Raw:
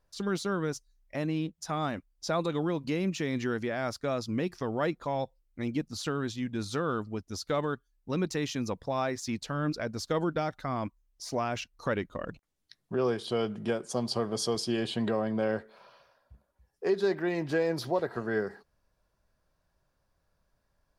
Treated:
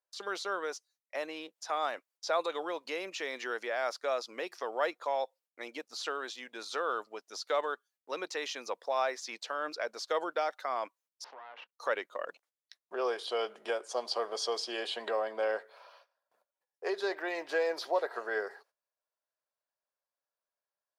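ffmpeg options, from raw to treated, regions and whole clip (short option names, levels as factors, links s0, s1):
-filter_complex "[0:a]asettb=1/sr,asplit=3[s0][s1][s2];[s0]atrim=end=11.244[s3];[s1]atrim=start=11.24:end=11.77,asetpts=PTS-STARTPTS,afade=t=in:d=0.004:c=qsin,afade=t=out:st=0.526:d=0.004:c=qsin,aeval=exprs='max(val(0),0)':c=same,highpass=120,equalizer=f=200:t=q:w=4:g=7,equalizer=f=320:t=q:w=4:g=-4,equalizer=f=620:t=q:w=4:g=-4,equalizer=f=940:t=q:w=4:g=4,equalizer=f=2300:t=q:w=4:g=-4,lowpass=f=3000:w=0.5412,lowpass=f=3000:w=1.3066,acompressor=threshold=0.00708:ratio=10:attack=3.2:release=140:knee=1:detection=peak[s4];[s2]atrim=start=11.766[s5];[s3][s4]acrossfade=d=0.004:c1=hsin:c2=qsin[s6];[s6][s5]acrossfade=d=0.004:c1=qsin:c2=hsin,agate=range=0.141:threshold=0.00112:ratio=16:detection=peak,acrossover=split=6100[s7][s8];[s8]acompressor=threshold=0.00178:ratio=4:attack=1:release=60[s9];[s7][s9]amix=inputs=2:normalize=0,highpass=f=490:w=0.5412,highpass=f=490:w=1.3066,volume=1.12"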